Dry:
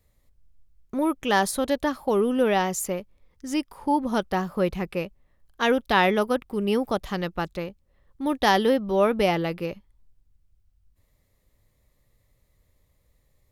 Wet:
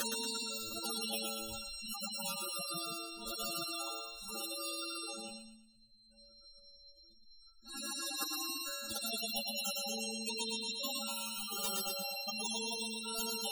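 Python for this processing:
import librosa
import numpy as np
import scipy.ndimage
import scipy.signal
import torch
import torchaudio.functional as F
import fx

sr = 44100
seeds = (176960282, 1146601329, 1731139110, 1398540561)

p1 = np.r_[np.sort(x[:len(x) // 32 * 32].reshape(-1, 32), axis=1).ravel(), x[len(x) // 32 * 32:]]
p2 = fx.paulstretch(p1, sr, seeds[0], factor=5.4, window_s=0.1, from_s=6.75)
p3 = fx.level_steps(p2, sr, step_db=13)
p4 = p2 + (p3 * 10.0 ** (-2.0 / 20.0))
p5 = fx.high_shelf_res(p4, sr, hz=3000.0, db=10.5, q=3.0)
p6 = fx.env_flanger(p5, sr, rest_ms=5.4, full_db=-10.0)
p7 = fx.peak_eq(p6, sr, hz=4900.0, db=-10.0, octaves=0.58)
p8 = fx.stiff_resonator(p7, sr, f0_hz=110.0, decay_s=0.82, stiffness=0.002)
p9 = fx.tube_stage(p8, sr, drive_db=22.0, bias=0.25)
p10 = fx.spec_gate(p9, sr, threshold_db=-15, keep='strong')
p11 = p10 + fx.echo_thinned(p10, sr, ms=116, feedback_pct=42, hz=850.0, wet_db=-9.5, dry=0)
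p12 = fx.vibrato(p11, sr, rate_hz=1.3, depth_cents=5.1)
y = fx.spectral_comp(p12, sr, ratio=4.0)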